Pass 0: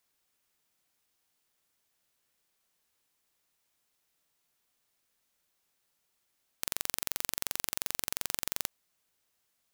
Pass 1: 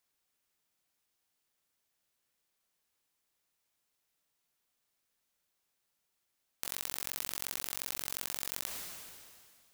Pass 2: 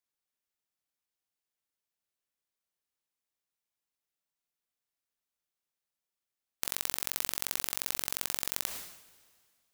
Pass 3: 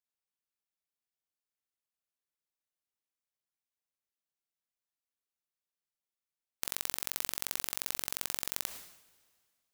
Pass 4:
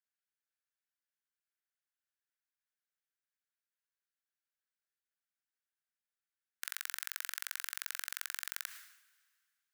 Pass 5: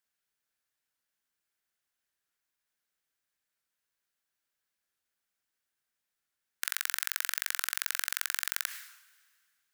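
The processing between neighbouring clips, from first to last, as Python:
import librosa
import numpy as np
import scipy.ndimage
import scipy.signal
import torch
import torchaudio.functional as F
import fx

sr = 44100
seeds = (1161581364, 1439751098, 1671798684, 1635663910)

y1 = fx.sustainer(x, sr, db_per_s=28.0)
y1 = y1 * 10.0 ** (-4.0 / 20.0)
y2 = fx.upward_expand(y1, sr, threshold_db=-49.0, expansion=2.5)
y2 = y2 * 10.0 ** (7.0 / 20.0)
y3 = fx.upward_expand(y2, sr, threshold_db=-42.0, expansion=1.5)
y3 = y3 * 10.0 ** (-2.0 / 20.0)
y4 = fx.ladder_highpass(y3, sr, hz=1400.0, resonance_pct=65)
y4 = y4 * 10.0 ** (5.0 / 20.0)
y5 = fx.record_warp(y4, sr, rpm=45.0, depth_cents=100.0)
y5 = y5 * 10.0 ** (8.0 / 20.0)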